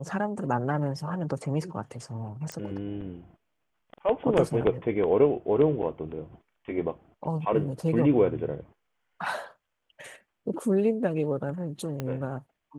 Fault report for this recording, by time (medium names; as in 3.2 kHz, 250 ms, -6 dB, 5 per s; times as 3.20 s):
2.52 s: pop -21 dBFS
12.00 s: pop -18 dBFS